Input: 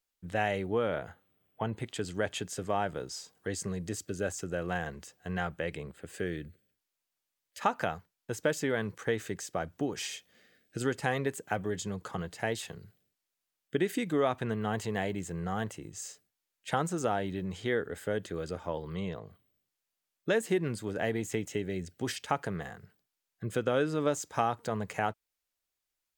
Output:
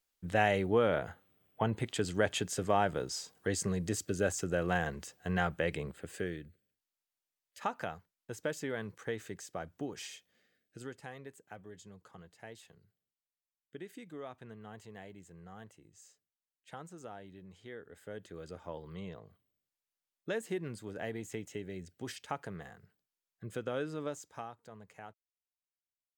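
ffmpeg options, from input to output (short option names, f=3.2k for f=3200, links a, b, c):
-af "volume=11dB,afade=t=out:st=5.89:d=0.55:silence=0.354813,afade=t=out:st=9.9:d=1.22:silence=0.316228,afade=t=in:st=17.78:d=0.91:silence=0.354813,afade=t=out:st=23.91:d=0.65:silence=0.298538"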